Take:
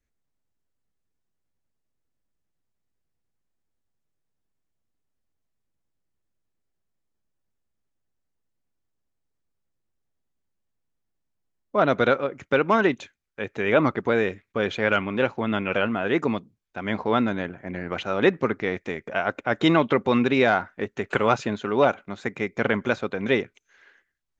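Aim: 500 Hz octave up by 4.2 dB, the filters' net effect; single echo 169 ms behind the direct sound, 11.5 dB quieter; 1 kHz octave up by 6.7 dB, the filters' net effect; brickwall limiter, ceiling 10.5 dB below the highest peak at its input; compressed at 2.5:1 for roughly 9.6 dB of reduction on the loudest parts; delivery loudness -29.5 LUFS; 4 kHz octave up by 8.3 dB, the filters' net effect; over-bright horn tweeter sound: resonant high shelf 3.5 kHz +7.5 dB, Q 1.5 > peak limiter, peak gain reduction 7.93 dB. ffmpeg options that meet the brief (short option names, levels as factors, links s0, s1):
-af "equalizer=f=500:t=o:g=3,equalizer=f=1000:t=o:g=8.5,equalizer=f=4000:t=o:g=5,acompressor=threshold=0.0631:ratio=2.5,alimiter=limit=0.133:level=0:latency=1,highshelf=f=3500:t=q:w=1.5:g=7.5,aecho=1:1:169:0.266,volume=1.88,alimiter=limit=0.133:level=0:latency=1"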